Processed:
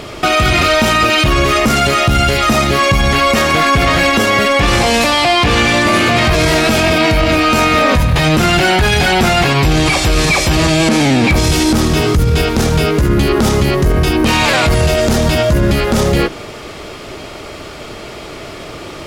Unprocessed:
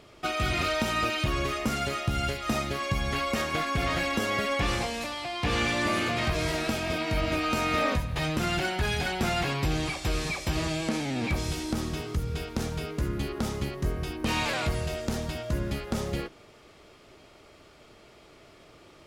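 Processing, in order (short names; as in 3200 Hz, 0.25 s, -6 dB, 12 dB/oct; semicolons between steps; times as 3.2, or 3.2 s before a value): in parallel at -7 dB: soft clip -29 dBFS, distortion -10 dB; on the sum: maximiser +25 dB; gain -3.5 dB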